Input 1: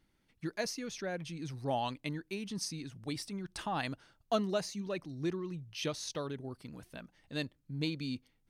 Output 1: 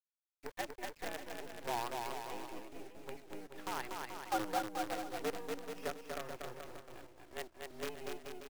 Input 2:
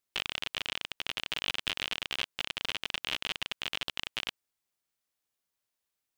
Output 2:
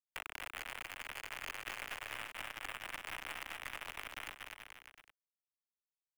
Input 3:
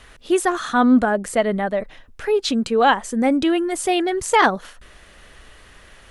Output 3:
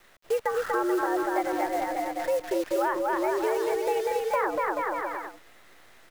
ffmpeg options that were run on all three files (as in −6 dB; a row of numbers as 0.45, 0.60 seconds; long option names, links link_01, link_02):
-filter_complex "[0:a]highpass=frequency=180:width_type=q:width=0.5412,highpass=frequency=180:width_type=q:width=1.307,lowpass=frequency=2300:width_type=q:width=0.5176,lowpass=frequency=2300:width_type=q:width=0.7071,lowpass=frequency=2300:width_type=q:width=1.932,afreqshift=110,acrusher=bits=6:dc=4:mix=0:aa=0.000001,aecho=1:1:240|432|585.6|708.5|806.8:0.631|0.398|0.251|0.158|0.1,acrossover=split=450|1500[link_01][link_02][link_03];[link_01]acompressor=threshold=-27dB:ratio=4[link_04];[link_02]acompressor=threshold=-23dB:ratio=4[link_05];[link_03]acompressor=threshold=-35dB:ratio=4[link_06];[link_04][link_05][link_06]amix=inputs=3:normalize=0,volume=-4.5dB"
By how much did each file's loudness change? −4.5, −10.0, −8.5 LU